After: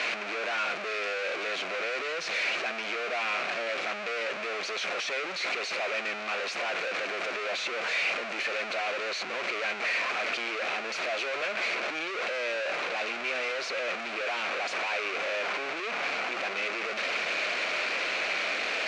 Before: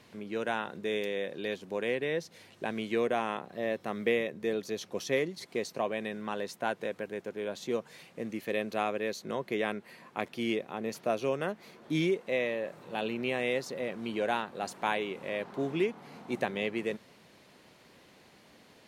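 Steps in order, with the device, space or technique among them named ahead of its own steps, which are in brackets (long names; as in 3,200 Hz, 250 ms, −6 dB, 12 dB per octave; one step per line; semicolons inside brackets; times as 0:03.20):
home computer beeper (sign of each sample alone; loudspeaker in its box 610–5,200 Hz, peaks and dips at 630 Hz +5 dB, 900 Hz −7 dB, 1,400 Hz +4 dB, 2,400 Hz +10 dB, 3,400 Hz −3 dB, 5,100 Hz −4 dB)
level +4 dB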